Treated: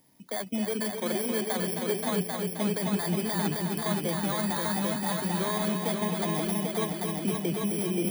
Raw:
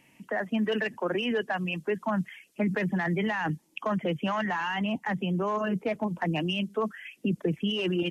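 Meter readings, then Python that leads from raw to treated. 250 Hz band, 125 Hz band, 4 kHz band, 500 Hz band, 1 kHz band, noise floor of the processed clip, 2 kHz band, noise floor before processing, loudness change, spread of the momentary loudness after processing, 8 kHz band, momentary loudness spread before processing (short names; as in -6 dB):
0.0 dB, 0.0 dB, -0.5 dB, -0.5 dB, -1.5 dB, -40 dBFS, -5.5 dB, -64 dBFS, +0.5 dB, 2 LU, n/a, 4 LU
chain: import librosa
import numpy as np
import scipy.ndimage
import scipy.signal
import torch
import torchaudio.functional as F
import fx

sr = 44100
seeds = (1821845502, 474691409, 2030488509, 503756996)

y = fx.bit_reversed(x, sr, seeds[0], block=16)
y = fx.echo_heads(y, sr, ms=264, heads='all three', feedback_pct=52, wet_db=-6.5)
y = y * librosa.db_to_amplitude(-3.0)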